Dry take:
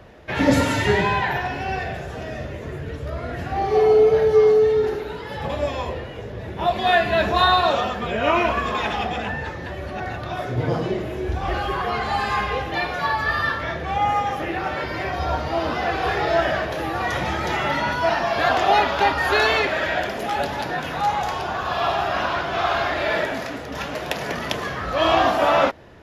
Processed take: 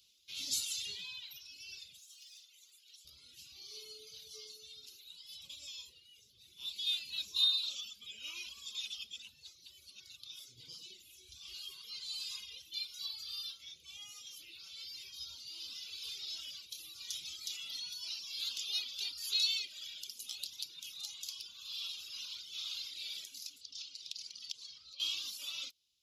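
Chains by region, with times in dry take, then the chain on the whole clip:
1.99–3.05 HPF 880 Hz + hard clip -33.5 dBFS
23.61–25 LPF 6600 Hz + bell 4700 Hz +6.5 dB 0.62 oct + compressor 8:1, threshold -28 dBFS
whole clip: reverb removal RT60 1.6 s; inverse Chebyshev high-pass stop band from 1900 Hz, stop band 40 dB

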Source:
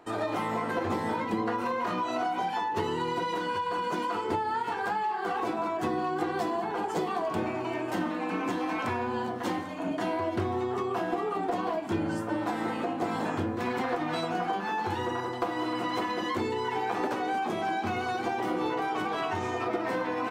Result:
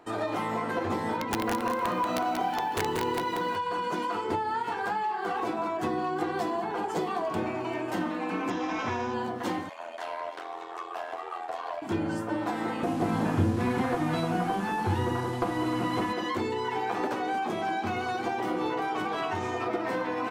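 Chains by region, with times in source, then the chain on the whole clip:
1.17–3.56 high shelf 3800 Hz -4.5 dB + wrapped overs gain 21 dB + lo-fi delay 0.185 s, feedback 35%, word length 9-bit, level -4.5 dB
8.5–9.14 CVSD 32 kbps + Butterworth band-stop 4400 Hz, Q 7.6
9.69–11.82 HPF 570 Hz 24 dB/oct + ring modulator 42 Hz + Doppler distortion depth 0.11 ms
12.83–16.13 delta modulation 64 kbps, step -37.5 dBFS + tone controls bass +11 dB, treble -5 dB
whole clip: dry

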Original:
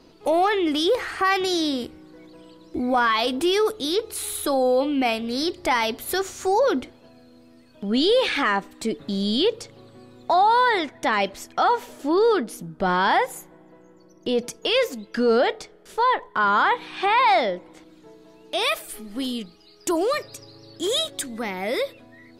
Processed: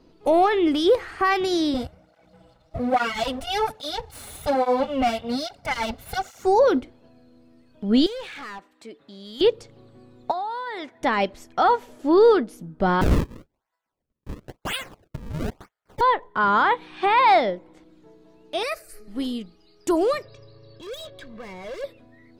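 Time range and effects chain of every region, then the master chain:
1.74–6.44 minimum comb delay 1.4 ms + sample leveller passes 1 + tape flanging out of phase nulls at 1.2 Hz, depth 6.6 ms
8.06–9.41 HPF 1300 Hz 6 dB/oct + high shelf 3600 Hz -9 dB + overloaded stage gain 27.5 dB
10.31–11.01 HPF 400 Hz 6 dB/oct + compressor 16:1, threshold -23 dBFS
13.01–16.01 gate -47 dBFS, range -15 dB + HPF 1000 Hz 24 dB/oct + decimation with a swept rate 35×, swing 160% 1 Hz
18.63–19.08 bell 4600 Hz +11.5 dB 0.91 oct + fixed phaser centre 920 Hz, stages 6
20.25–21.84 LPF 4300 Hz 24 dB/oct + overloaded stage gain 32 dB + comb 1.8 ms, depth 66%
whole clip: tilt -1.5 dB/oct; upward expander 1.5:1, over -31 dBFS; gain +2.5 dB

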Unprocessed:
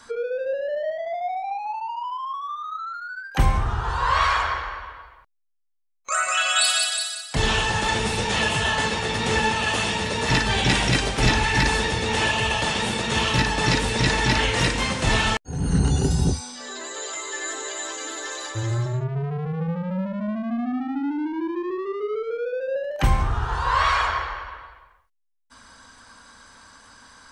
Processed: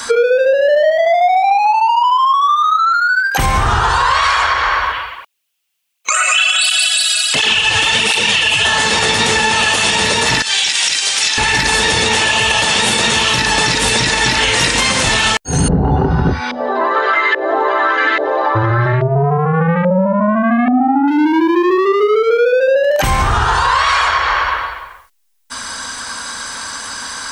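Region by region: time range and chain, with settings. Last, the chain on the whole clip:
4.92–8.65 bell 2800 Hz +11 dB 0.65 oct + tape flanging out of phase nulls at 1.4 Hz, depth 5.8 ms
10.42–11.38 weighting filter ITU-R 468 + gate -11 dBFS, range -15 dB
15.68–21.08 LFO low-pass saw up 1.2 Hz 570–2200 Hz + polynomial smoothing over 15 samples
whole clip: tilt +2 dB/oct; compressor 4:1, threshold -31 dBFS; maximiser +24 dB; gain -3 dB

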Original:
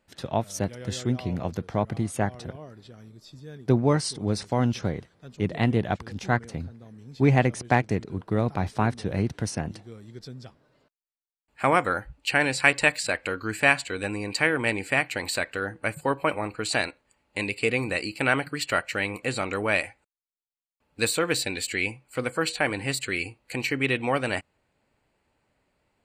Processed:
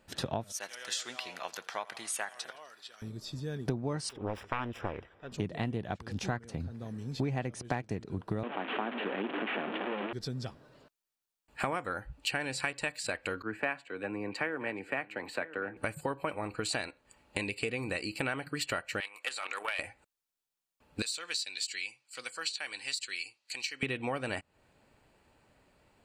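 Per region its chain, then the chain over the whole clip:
0.52–3.02 HPF 1400 Hz + feedback echo 83 ms, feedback 55%, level -22 dB
4.09–5.32 self-modulated delay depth 0.75 ms + polynomial smoothing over 25 samples + bell 160 Hz -14 dB 1.5 oct
8.43–10.13 delta modulation 16 kbps, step -23.5 dBFS + steep high-pass 230 Hz
13.42–15.77 three-band isolator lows -14 dB, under 180 Hz, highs -18 dB, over 2600 Hz + echo 0.979 s -19 dB + three-band expander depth 70%
19–19.79 HPF 1100 Hz + level quantiser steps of 10 dB + Doppler distortion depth 0.12 ms
21.02–23.83 band-pass 5200 Hz, Q 1.8 + core saturation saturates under 1200 Hz
whole clip: compressor 6:1, threshold -38 dBFS; notch 2100 Hz, Q 16; gain +6 dB

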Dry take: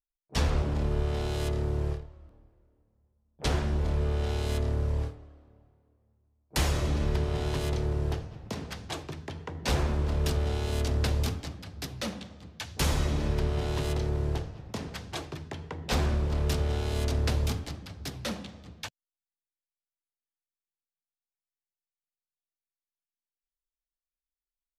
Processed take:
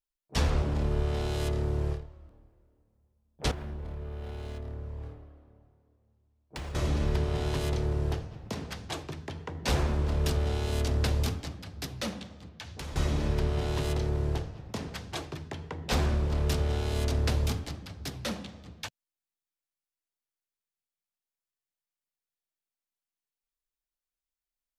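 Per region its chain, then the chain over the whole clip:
3.51–6.75 bell 6000 Hz -5.5 dB 1.6 oct + compressor 12:1, threshold -34 dBFS + decimation joined by straight lines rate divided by 3×
12.49–12.96 high shelf 7700 Hz -10.5 dB + compressor 4:1, threshold -38 dBFS
whole clip: dry

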